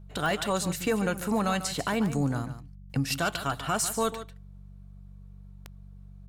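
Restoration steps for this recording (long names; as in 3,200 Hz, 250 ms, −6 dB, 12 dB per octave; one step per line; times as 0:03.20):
click removal
hum removal 47.9 Hz, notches 4
echo removal 145 ms −12 dB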